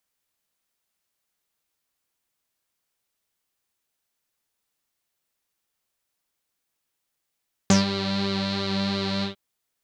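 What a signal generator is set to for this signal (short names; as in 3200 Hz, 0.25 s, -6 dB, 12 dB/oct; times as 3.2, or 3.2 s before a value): synth patch with pulse-width modulation G3, sub -10 dB, filter lowpass, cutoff 3500 Hz, Q 7.2, filter envelope 1 oct, filter decay 0.12 s, filter sustain 25%, attack 1.3 ms, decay 0.15 s, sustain -10.5 dB, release 0.12 s, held 1.53 s, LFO 2.9 Hz, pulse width 38%, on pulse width 16%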